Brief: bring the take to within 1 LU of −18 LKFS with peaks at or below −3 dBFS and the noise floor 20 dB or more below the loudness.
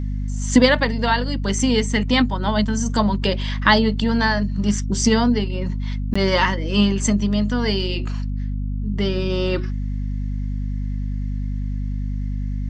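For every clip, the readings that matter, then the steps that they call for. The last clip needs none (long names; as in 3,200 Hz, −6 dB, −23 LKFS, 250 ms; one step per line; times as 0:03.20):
number of dropouts 1; longest dropout 15 ms; mains hum 50 Hz; hum harmonics up to 250 Hz; level of the hum −22 dBFS; integrated loudness −21.0 LKFS; sample peak −1.5 dBFS; target loudness −18.0 LKFS
→ repair the gap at 0:06.14, 15 ms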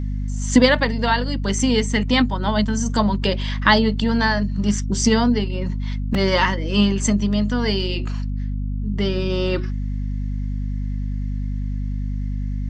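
number of dropouts 0; mains hum 50 Hz; hum harmonics up to 250 Hz; level of the hum −22 dBFS
→ hum removal 50 Hz, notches 5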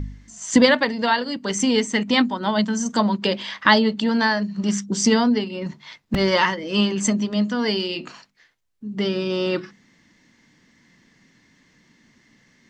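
mains hum none found; integrated loudness −21.0 LKFS; sample peak −2.0 dBFS; target loudness −18.0 LKFS
→ level +3 dB
brickwall limiter −3 dBFS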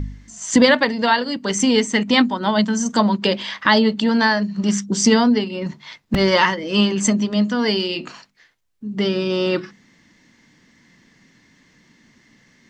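integrated loudness −18.0 LKFS; sample peak −3.0 dBFS; background noise floor −57 dBFS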